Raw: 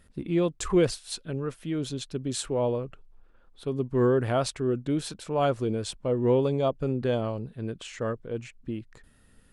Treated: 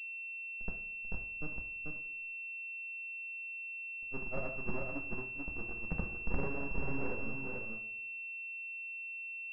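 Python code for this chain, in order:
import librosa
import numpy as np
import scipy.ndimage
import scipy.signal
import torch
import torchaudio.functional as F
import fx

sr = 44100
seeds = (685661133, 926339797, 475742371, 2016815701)

y = scipy.signal.sosfilt(scipy.signal.butter(2, 81.0, 'highpass', fs=sr, output='sos'), x)
y = fx.auto_swell(y, sr, attack_ms=387.0)
y = fx.schmitt(y, sr, flips_db=-24.5)
y = fx.granulator(y, sr, seeds[0], grain_ms=100.0, per_s=20.0, spray_ms=100.0, spread_st=0)
y = np.maximum(y, 0.0)
y = y + 10.0 ** (-3.5 / 20.0) * np.pad(y, (int(438 * sr / 1000.0), 0))[:len(y)]
y = fx.rev_double_slope(y, sr, seeds[1], early_s=0.51, late_s=1.6, knee_db=-18, drr_db=2.0)
y = fx.pwm(y, sr, carrier_hz=2700.0)
y = y * librosa.db_to_amplitude(4.5)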